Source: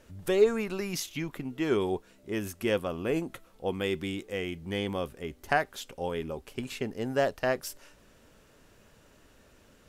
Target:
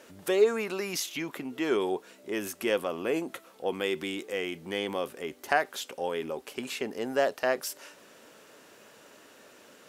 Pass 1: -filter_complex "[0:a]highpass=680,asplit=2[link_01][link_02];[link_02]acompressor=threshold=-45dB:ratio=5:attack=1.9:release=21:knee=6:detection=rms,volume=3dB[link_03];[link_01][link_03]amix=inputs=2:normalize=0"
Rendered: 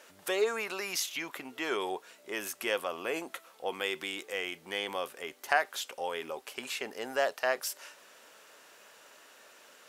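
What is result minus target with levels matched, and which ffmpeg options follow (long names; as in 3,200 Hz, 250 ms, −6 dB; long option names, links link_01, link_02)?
250 Hz band −6.5 dB
-filter_complex "[0:a]highpass=310,asplit=2[link_01][link_02];[link_02]acompressor=threshold=-45dB:ratio=5:attack=1.9:release=21:knee=6:detection=rms,volume=3dB[link_03];[link_01][link_03]amix=inputs=2:normalize=0"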